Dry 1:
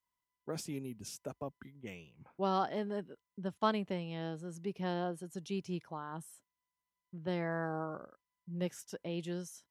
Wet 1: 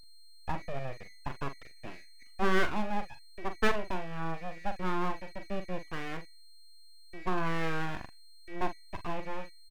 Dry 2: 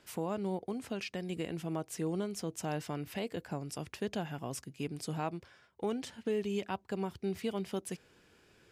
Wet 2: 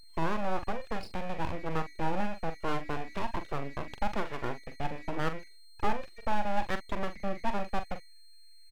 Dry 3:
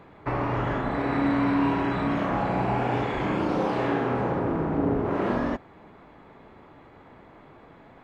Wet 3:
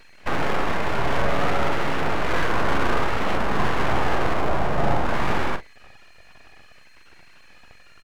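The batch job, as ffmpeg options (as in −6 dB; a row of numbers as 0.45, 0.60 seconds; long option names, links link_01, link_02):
-filter_complex "[0:a]bandreject=frequency=2800:width=12,acrossover=split=2700[link_01][link_02];[link_02]acompressor=threshold=-57dB:ratio=4:attack=1:release=60[link_03];[link_01][link_03]amix=inputs=2:normalize=0,anlmdn=0.0631,highpass=frequency=75:width=0.5412,highpass=frequency=75:width=1.3066,equalizer=frequency=4200:width_type=o:width=1.3:gain=-9,bandreject=frequency=50:width_type=h:width=6,bandreject=frequency=100:width_type=h:width=6,bandreject=frequency=150:width_type=h:width=6,flanger=delay=1.7:depth=1.1:regen=28:speed=0.56:shape=sinusoidal,asplit=2[link_04][link_05];[link_05]asoftclip=type=tanh:threshold=-27dB,volume=-4dB[link_06];[link_04][link_06]amix=inputs=2:normalize=0,aeval=exprs='val(0)+0.00158*sin(2*PI*2100*n/s)':channel_layout=same,aeval=exprs='abs(val(0))':channel_layout=same,asplit=2[link_07][link_08];[link_08]adelay=43,volume=-10dB[link_09];[link_07][link_09]amix=inputs=2:normalize=0,volume=7.5dB"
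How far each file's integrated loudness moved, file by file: +3.5, +2.5, +1.5 LU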